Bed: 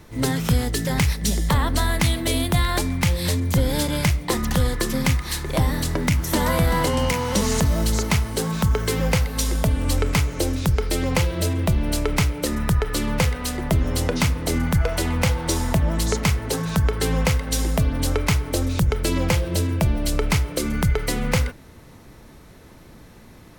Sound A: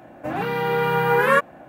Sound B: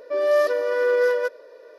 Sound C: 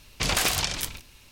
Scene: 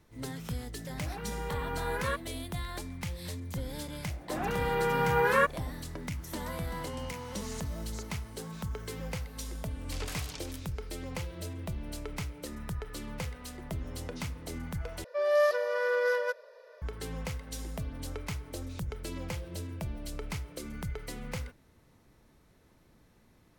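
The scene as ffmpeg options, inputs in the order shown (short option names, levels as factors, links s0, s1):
-filter_complex "[1:a]asplit=2[s0][s1];[0:a]volume=0.141[s2];[2:a]highpass=f=550:w=0.5412,highpass=f=550:w=1.3066[s3];[s2]asplit=2[s4][s5];[s4]atrim=end=15.044[s6];[s3]atrim=end=1.78,asetpts=PTS-STARTPTS,volume=0.631[s7];[s5]atrim=start=16.816[s8];[s0]atrim=end=1.68,asetpts=PTS-STARTPTS,volume=0.15,afade=t=in:d=0.004:c=hsin,afade=t=out:st=1.676:d=0.004:c=hsin,adelay=760[s9];[s1]atrim=end=1.68,asetpts=PTS-STARTPTS,volume=0.422,afade=t=in:d=0.004:c=hsin,afade=t=out:st=1.676:d=0.004:c=hsin,adelay=4060[s10];[3:a]atrim=end=1.31,asetpts=PTS-STARTPTS,volume=0.133,afade=t=in:d=0.004:c=hsin,afade=t=out:st=1.306:d=0.004:c=hsin,adelay=9710[s11];[s6][s7]acrossfade=d=0.004:c1=hsin:c2=hsin[s12];[s12][s8]acrossfade=d=0.004:c1=hsin:c2=hsin[s13];[s13][s9][s10][s11]amix=inputs=4:normalize=0"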